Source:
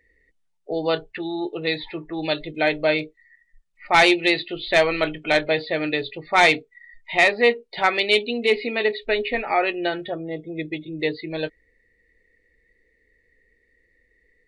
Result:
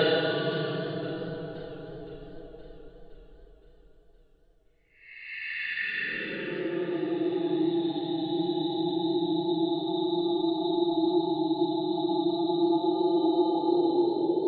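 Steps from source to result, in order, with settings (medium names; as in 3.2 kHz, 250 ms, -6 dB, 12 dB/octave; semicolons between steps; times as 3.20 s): Paulstretch 28×, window 0.05 s, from 0.95 s; modulated delay 517 ms, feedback 55%, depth 110 cents, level -15.5 dB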